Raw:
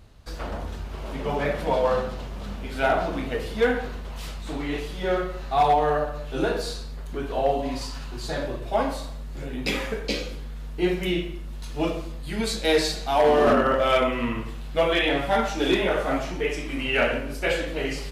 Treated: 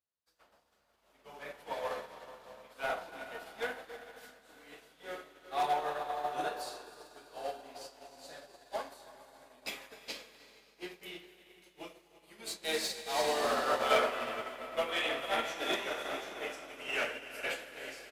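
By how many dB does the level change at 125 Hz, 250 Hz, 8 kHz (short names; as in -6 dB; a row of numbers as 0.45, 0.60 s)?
-28.0, -20.0, -6.0 dB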